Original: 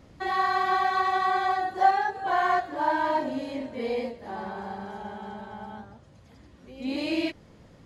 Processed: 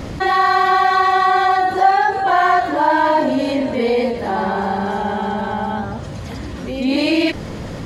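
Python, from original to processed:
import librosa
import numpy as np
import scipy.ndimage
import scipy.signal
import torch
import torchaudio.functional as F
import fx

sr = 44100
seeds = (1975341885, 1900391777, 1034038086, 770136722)

y = fx.env_flatten(x, sr, amount_pct=50)
y = y * 10.0 ** (6.0 / 20.0)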